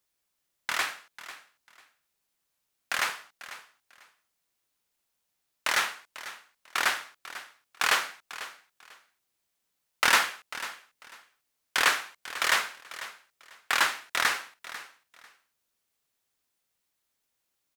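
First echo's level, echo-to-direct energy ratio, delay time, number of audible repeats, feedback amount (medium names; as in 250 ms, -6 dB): -15.0 dB, -15.0 dB, 495 ms, 2, 21%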